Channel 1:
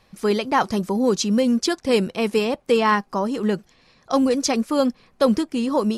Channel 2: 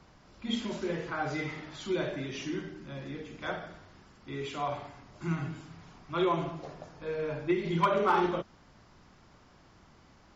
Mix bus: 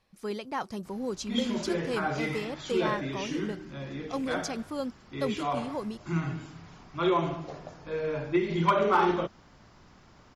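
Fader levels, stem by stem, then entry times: -14.0, +2.5 dB; 0.00, 0.85 s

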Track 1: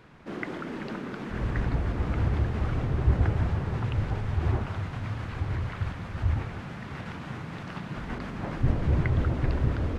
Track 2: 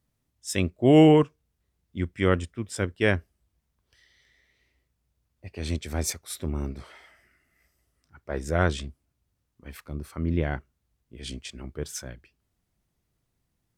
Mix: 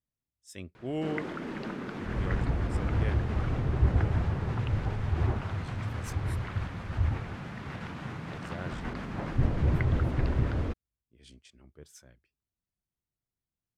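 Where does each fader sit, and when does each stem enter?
-1.5, -17.5 dB; 0.75, 0.00 s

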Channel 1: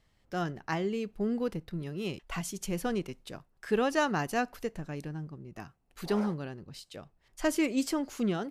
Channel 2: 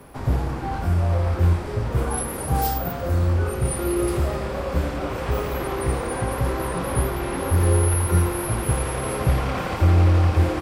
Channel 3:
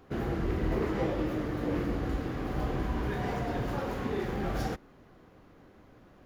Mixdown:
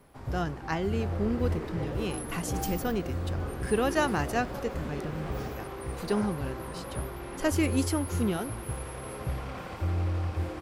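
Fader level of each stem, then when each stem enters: +1.0, -13.0, -7.0 dB; 0.00, 0.00, 0.80 s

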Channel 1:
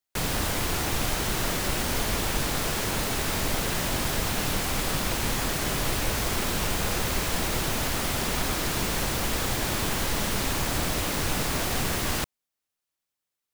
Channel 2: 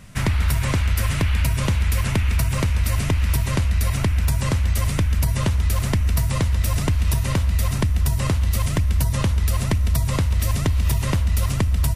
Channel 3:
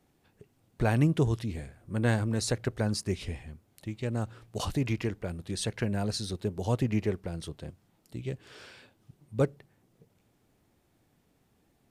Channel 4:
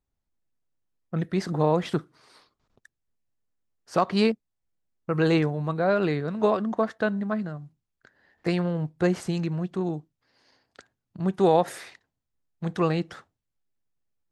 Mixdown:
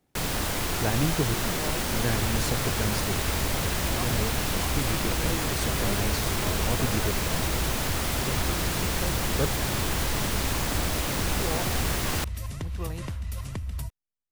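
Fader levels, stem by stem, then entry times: -1.0, -13.5, -2.5, -14.5 dB; 0.00, 1.95, 0.00, 0.00 s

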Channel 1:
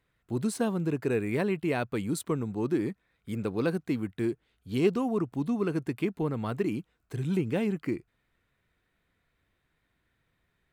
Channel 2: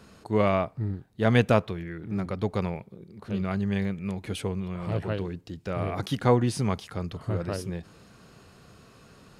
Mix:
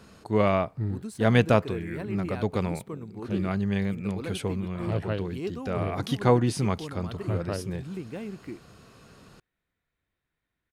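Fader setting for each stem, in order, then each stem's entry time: -8.5, +0.5 dB; 0.60, 0.00 s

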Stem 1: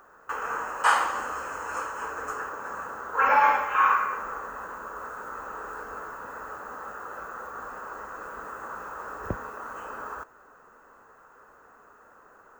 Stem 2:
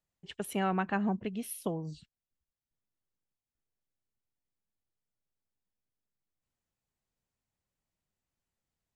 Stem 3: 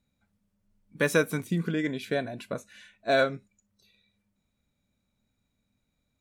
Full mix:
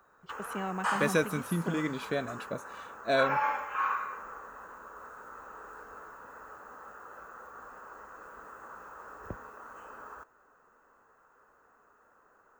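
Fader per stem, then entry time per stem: -9.5, -5.5, -3.5 dB; 0.00, 0.00, 0.00 s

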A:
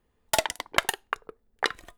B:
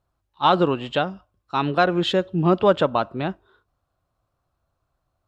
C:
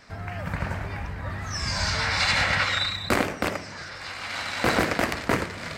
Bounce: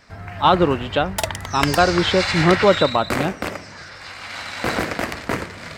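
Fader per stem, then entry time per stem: +0.5, +2.5, 0.0 dB; 0.85, 0.00, 0.00 s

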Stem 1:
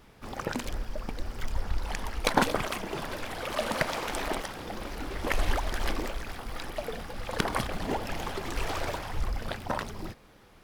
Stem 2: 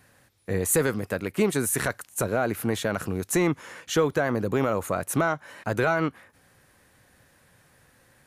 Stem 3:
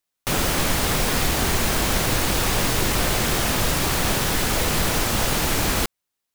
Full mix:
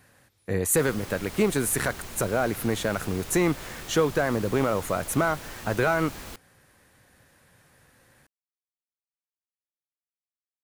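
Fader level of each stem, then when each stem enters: off, 0.0 dB, -19.0 dB; off, 0.00 s, 0.50 s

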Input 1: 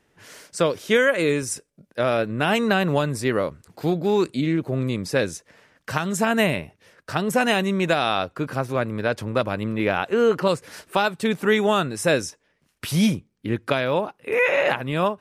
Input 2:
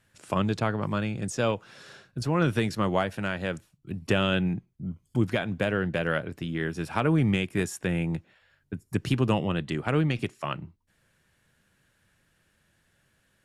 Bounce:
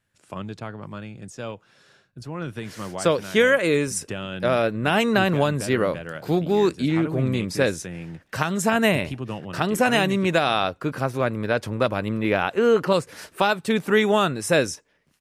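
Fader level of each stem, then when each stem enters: +0.5, -7.5 dB; 2.45, 0.00 s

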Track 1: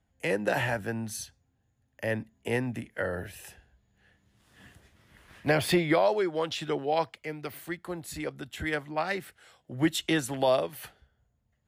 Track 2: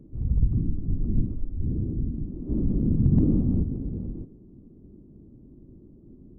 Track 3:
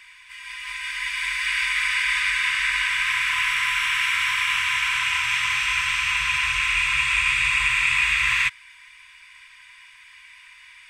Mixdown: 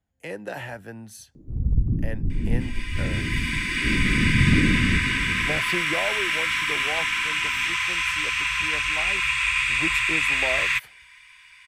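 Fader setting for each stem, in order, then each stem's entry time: -6.0, +1.0, -2.0 dB; 0.00, 1.35, 2.30 s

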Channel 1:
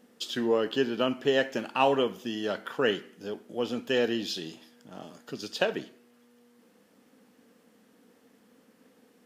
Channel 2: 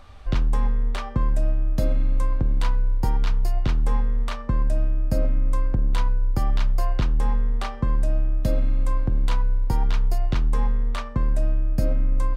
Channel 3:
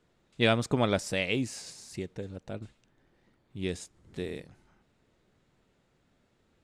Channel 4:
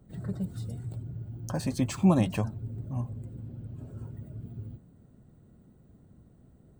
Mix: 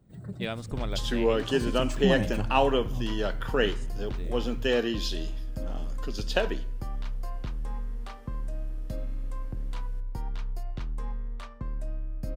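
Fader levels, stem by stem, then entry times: +0.5, -12.5, -9.5, -4.5 dB; 0.75, 0.45, 0.00, 0.00 s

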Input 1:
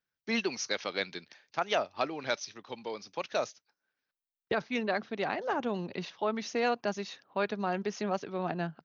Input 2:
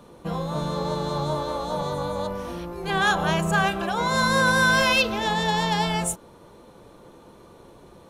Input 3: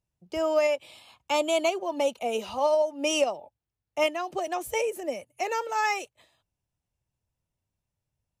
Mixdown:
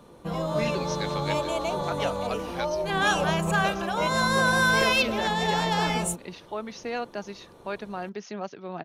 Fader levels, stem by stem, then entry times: -2.5, -2.5, -6.5 dB; 0.30, 0.00, 0.00 s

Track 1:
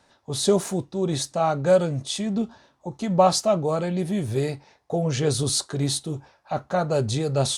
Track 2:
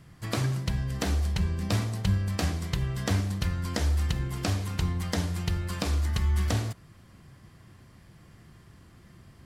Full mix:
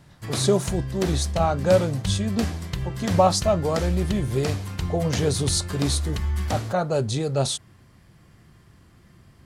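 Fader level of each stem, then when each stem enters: -0.5, 0.0 dB; 0.00, 0.00 s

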